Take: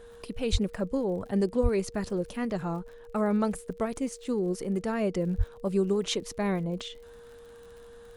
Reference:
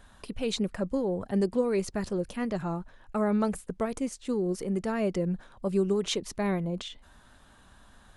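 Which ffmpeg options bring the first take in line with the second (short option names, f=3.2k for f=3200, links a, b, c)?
-filter_complex "[0:a]adeclick=t=4,bandreject=f=470:w=30,asplit=3[a][b][c];[a]afade=t=out:st=0.51:d=0.02[d];[b]highpass=f=140:w=0.5412,highpass=f=140:w=1.3066,afade=t=in:st=0.51:d=0.02,afade=t=out:st=0.63:d=0.02[e];[c]afade=t=in:st=0.63:d=0.02[f];[d][e][f]amix=inputs=3:normalize=0,asplit=3[g][h][i];[g]afade=t=out:st=1.62:d=0.02[j];[h]highpass=f=140:w=0.5412,highpass=f=140:w=1.3066,afade=t=in:st=1.62:d=0.02,afade=t=out:st=1.74:d=0.02[k];[i]afade=t=in:st=1.74:d=0.02[l];[j][k][l]amix=inputs=3:normalize=0,asplit=3[m][n][o];[m]afade=t=out:st=5.37:d=0.02[p];[n]highpass=f=140:w=0.5412,highpass=f=140:w=1.3066,afade=t=in:st=5.37:d=0.02,afade=t=out:st=5.49:d=0.02[q];[o]afade=t=in:st=5.49:d=0.02[r];[p][q][r]amix=inputs=3:normalize=0"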